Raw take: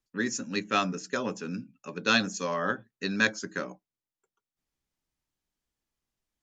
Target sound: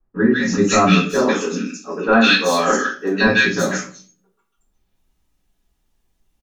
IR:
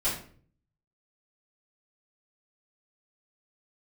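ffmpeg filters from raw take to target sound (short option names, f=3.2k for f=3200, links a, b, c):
-filter_complex "[0:a]asettb=1/sr,asplit=3[a][b][c];[a]atrim=end=1.174[d];[b]atrim=start=1.17:end=3.26,asetpts=PTS-STARTPTS,afade=t=in:d=0.004:c=qsin,afade=t=out:st=2.086:d=0.004:c=qsin,highpass=f=250:w=0.5412,highpass=f=250:w=1.3066[e];[c]atrim=start=3.256[f];[d][e]acrossfade=d=0.004:c1=hsin:c2=qsin[g];[g][f]acrossfade=d=0.004:c1=qsin:c2=hsin,asoftclip=type=hard:threshold=-15.5dB,acrossover=split=1500|5200[h][i][j];[i]adelay=150[k];[j]adelay=370[l];[h][k][l]amix=inputs=3:normalize=0[m];[1:a]atrim=start_sample=2205,asetrate=52920,aresample=44100[n];[m][n]afir=irnorm=-1:irlink=0,volume=8dB"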